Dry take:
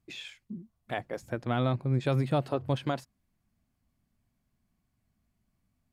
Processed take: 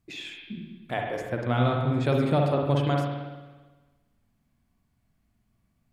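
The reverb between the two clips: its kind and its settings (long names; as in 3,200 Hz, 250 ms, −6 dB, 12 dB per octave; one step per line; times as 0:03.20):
spring reverb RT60 1.3 s, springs 49/56 ms, chirp 20 ms, DRR 0.5 dB
level +2.5 dB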